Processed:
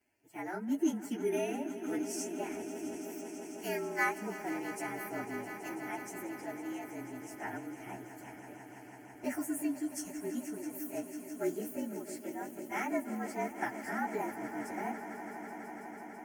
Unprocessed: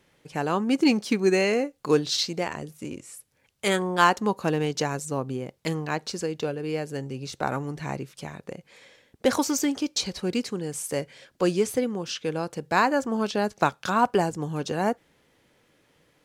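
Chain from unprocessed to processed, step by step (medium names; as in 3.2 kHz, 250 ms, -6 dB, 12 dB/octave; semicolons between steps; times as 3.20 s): frequency axis rescaled in octaves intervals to 113%; high-pass 89 Hz; static phaser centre 760 Hz, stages 8; echo with a slow build-up 165 ms, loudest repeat 5, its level -14.5 dB; trim -7 dB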